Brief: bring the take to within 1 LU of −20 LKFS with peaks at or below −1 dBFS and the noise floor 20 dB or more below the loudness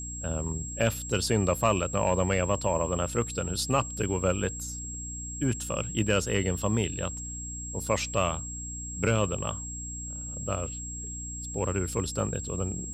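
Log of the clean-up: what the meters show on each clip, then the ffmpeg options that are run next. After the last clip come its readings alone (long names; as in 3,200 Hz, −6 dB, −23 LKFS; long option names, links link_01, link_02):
mains hum 60 Hz; hum harmonics up to 300 Hz; level of the hum −38 dBFS; interfering tone 7,600 Hz; level of the tone −37 dBFS; integrated loudness −29.5 LKFS; sample peak −12.0 dBFS; target loudness −20.0 LKFS
→ -af "bandreject=frequency=60:width_type=h:width=6,bandreject=frequency=120:width_type=h:width=6,bandreject=frequency=180:width_type=h:width=6,bandreject=frequency=240:width_type=h:width=6,bandreject=frequency=300:width_type=h:width=6"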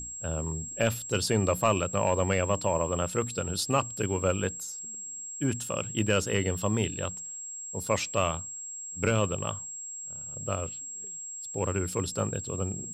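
mains hum none found; interfering tone 7,600 Hz; level of the tone −37 dBFS
→ -af "bandreject=frequency=7600:width=30"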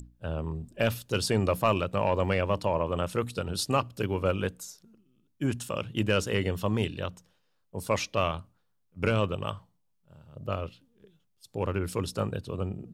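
interfering tone none found; integrated loudness −30.0 LKFS; sample peak −12.5 dBFS; target loudness −20.0 LKFS
→ -af "volume=10dB"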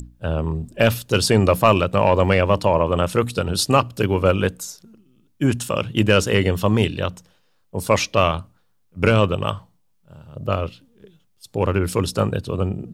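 integrated loudness −20.0 LKFS; sample peak −2.5 dBFS; background noise floor −62 dBFS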